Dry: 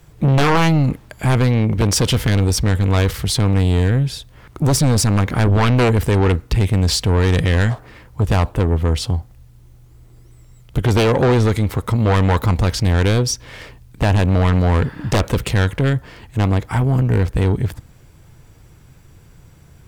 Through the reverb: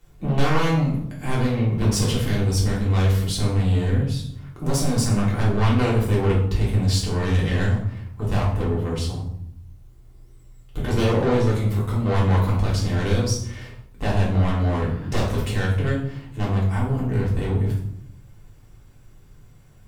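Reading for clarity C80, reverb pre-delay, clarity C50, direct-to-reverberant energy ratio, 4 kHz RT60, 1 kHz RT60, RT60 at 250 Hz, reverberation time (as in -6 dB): 8.5 dB, 3 ms, 4.5 dB, -5.5 dB, 0.45 s, 0.70 s, 1.1 s, 0.75 s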